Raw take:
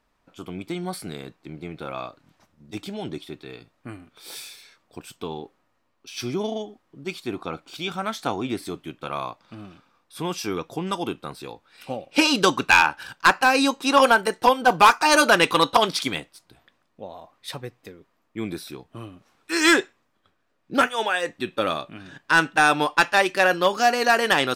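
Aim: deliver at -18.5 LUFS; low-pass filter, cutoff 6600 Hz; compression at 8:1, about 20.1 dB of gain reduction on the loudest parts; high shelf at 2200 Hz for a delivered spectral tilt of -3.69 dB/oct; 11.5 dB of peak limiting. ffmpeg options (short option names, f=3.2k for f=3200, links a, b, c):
-af "lowpass=6.6k,highshelf=f=2.2k:g=5,acompressor=threshold=-31dB:ratio=8,volume=19dB,alimiter=limit=-5dB:level=0:latency=1"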